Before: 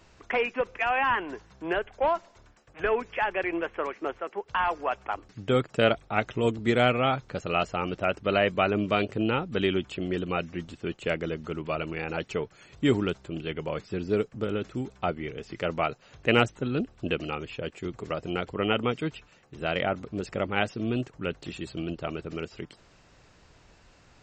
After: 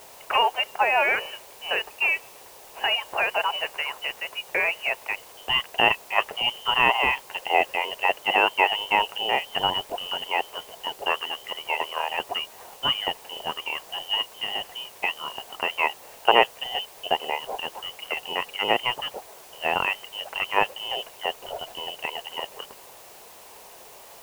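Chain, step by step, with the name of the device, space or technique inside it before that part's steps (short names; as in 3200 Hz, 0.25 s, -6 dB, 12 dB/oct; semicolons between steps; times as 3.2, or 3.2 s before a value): scrambled radio voice (BPF 360–3200 Hz; inverted band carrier 3300 Hz; white noise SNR 19 dB); band shelf 630 Hz +12 dB; gain +1.5 dB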